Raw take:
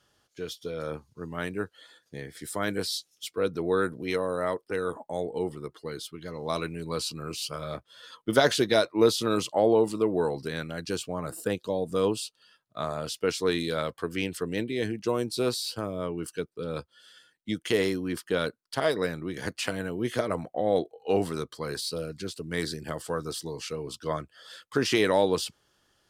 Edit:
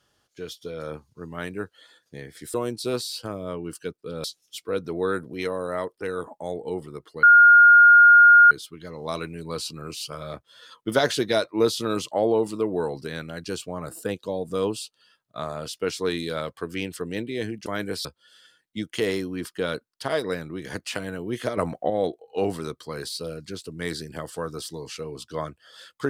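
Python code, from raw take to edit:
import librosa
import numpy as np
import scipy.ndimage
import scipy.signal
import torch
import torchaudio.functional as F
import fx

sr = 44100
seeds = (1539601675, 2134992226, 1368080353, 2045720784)

y = fx.edit(x, sr, fx.swap(start_s=2.54, length_s=0.39, other_s=15.07, other_length_s=1.7),
    fx.insert_tone(at_s=5.92, length_s=1.28, hz=1420.0, db=-8.5),
    fx.clip_gain(start_s=20.29, length_s=0.33, db=5.0), tone=tone)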